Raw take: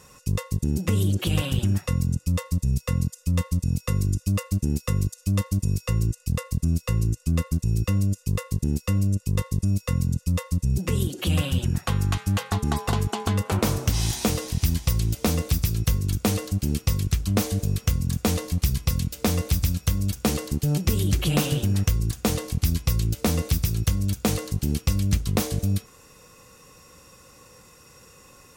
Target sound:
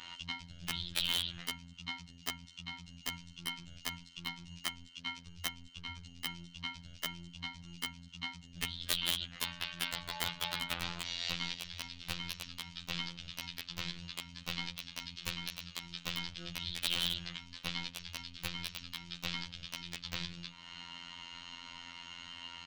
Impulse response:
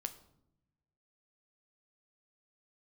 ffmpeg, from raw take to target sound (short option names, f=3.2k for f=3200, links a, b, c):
-af "highpass=41,equalizer=f=610:w=0.58:g=-15,bandreject=f=50:t=h:w=6,bandreject=f=100:t=h:w=6,bandreject=f=150:t=h:w=6,bandreject=f=200:t=h:w=6,bandreject=f=250:t=h:w=6,bandreject=f=300:t=h:w=6,bandreject=f=350:t=h:w=6,alimiter=limit=-23.5dB:level=0:latency=1:release=37,acompressor=threshold=-44dB:ratio=2,highpass=f=290:t=q:w=0.5412,highpass=f=290:t=q:w=1.307,lowpass=f=3.3k:t=q:w=0.5176,lowpass=f=3.3k:t=q:w=0.7071,lowpass=f=3.3k:t=q:w=1.932,afreqshift=-320,asetrate=55566,aresample=44100,aeval=exprs='(mod(79.4*val(0)+1,2)-1)/79.4':c=same,crystalizer=i=4:c=0,aeval=exprs='(mod(44.7*val(0)+1,2)-1)/44.7':c=same,afftfilt=real='hypot(re,im)*cos(PI*b)':imag='0':win_size=2048:overlap=0.75,volume=12.5dB"